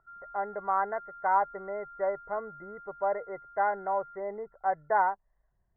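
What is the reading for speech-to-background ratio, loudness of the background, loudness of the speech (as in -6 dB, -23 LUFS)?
16.5 dB, -48.0 LUFS, -31.5 LUFS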